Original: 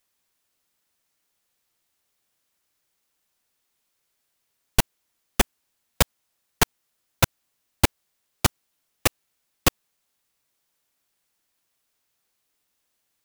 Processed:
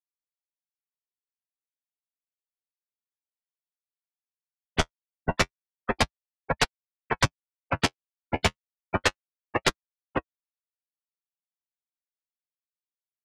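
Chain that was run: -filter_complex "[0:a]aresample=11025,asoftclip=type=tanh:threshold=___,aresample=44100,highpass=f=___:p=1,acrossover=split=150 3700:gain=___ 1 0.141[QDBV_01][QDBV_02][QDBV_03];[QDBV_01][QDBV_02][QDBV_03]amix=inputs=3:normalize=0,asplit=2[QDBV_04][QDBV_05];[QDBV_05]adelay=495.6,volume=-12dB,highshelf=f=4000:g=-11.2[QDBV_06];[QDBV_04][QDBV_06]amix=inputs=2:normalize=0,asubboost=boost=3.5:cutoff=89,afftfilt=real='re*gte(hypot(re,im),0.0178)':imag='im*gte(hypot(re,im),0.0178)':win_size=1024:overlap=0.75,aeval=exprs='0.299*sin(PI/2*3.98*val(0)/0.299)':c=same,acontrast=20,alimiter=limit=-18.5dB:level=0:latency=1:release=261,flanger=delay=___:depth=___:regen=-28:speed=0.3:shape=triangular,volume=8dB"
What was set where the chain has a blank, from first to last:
-15.5dB, 47, 0.126, 6.8, 6.3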